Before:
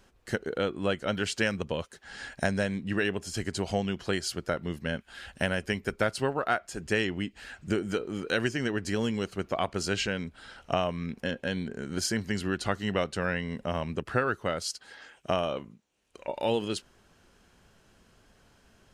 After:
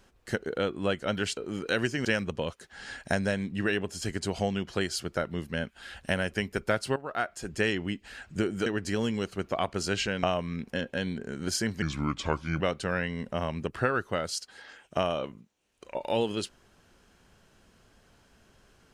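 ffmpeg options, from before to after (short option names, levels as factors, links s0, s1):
-filter_complex "[0:a]asplit=8[s0][s1][s2][s3][s4][s5][s6][s7];[s0]atrim=end=1.372[s8];[s1]atrim=start=7.978:end=8.662[s9];[s2]atrim=start=1.368:end=6.28,asetpts=PTS-STARTPTS,afade=t=out:st=4.908:d=0.004:c=hsin:silence=0.177828[s10];[s3]atrim=start=6.28:end=7.982,asetpts=PTS-STARTPTS,afade=t=in:d=0.37:silence=0.177828[s11];[s4]atrim=start=8.658:end=10.232[s12];[s5]atrim=start=10.728:end=12.324[s13];[s6]atrim=start=12.32:end=12.93,asetpts=PTS-STARTPTS,asetrate=34398,aresample=44100,atrim=end_sample=34488,asetpts=PTS-STARTPTS[s14];[s7]atrim=start=12.926[s15];[s8][s9]acrossfade=d=0.004:c1=hsin:c2=hsin[s16];[s10][s11]concat=n=2:v=0:a=1[s17];[s16][s17]acrossfade=d=0.004:c1=hsin:c2=hsin[s18];[s18][s12]acrossfade=d=0.004:c1=hsin:c2=hsin[s19];[s19][s13]acrossfade=d=0.004:c1=hsin:c2=hsin[s20];[s20][s14]acrossfade=d=0.004:c1=hsin:c2=hsin[s21];[s21][s15]acrossfade=d=0.004:c1=hsin:c2=hsin"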